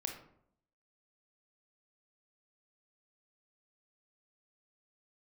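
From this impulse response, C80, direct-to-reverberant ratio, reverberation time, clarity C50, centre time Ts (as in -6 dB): 10.5 dB, 2.5 dB, 0.70 s, 6.5 dB, 24 ms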